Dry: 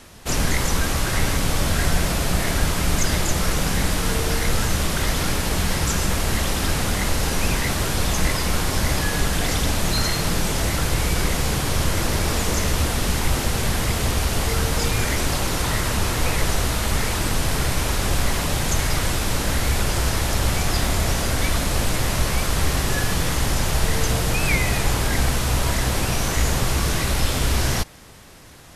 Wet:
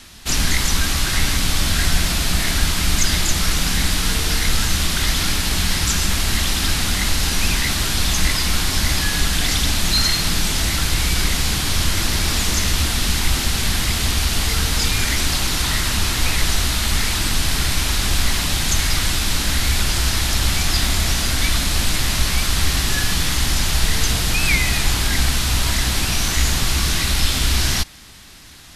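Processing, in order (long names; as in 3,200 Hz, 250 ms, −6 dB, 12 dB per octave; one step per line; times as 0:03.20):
octave-band graphic EQ 125/500/1,000/4,000 Hz −6/−11/−3/+5 dB
level +3.5 dB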